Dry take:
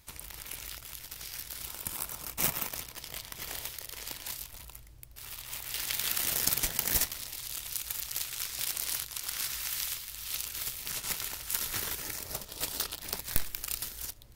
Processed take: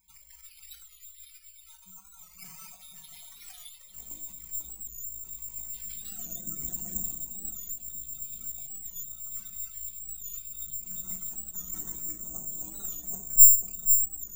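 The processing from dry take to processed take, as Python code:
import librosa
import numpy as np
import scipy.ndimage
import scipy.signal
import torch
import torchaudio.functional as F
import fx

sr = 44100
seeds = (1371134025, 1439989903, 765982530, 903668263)

y = fx.tilt_shelf(x, sr, db=fx.steps((0.0, -3.0), (3.93, 7.0)), hz=710.0)
y = y + 0.69 * np.pad(y, (int(5.3 * sr / 1000.0), 0))[:len(y)]
y = fx.dynamic_eq(y, sr, hz=410.0, q=2.8, threshold_db=-59.0, ratio=4.0, max_db=-4)
y = fx.spec_topn(y, sr, count=64)
y = fx.small_body(y, sr, hz=(300.0, 680.0, 3600.0), ring_ms=95, db=15)
y = 10.0 ** (-20.5 / 20.0) * np.tanh(y / 10.0 ** (-20.5 / 20.0))
y = fx.echo_alternate(y, sr, ms=492, hz=1100.0, feedback_pct=64, wet_db=-7.0)
y = fx.room_shoebox(y, sr, seeds[0], volume_m3=420.0, walls='furnished', distance_m=1.6)
y = (np.kron(scipy.signal.resample_poly(y, 1, 6), np.eye(6)[0]) * 6)[:len(y)]
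y = fx.record_warp(y, sr, rpm=45.0, depth_cents=100.0)
y = y * 10.0 ** (-14.5 / 20.0)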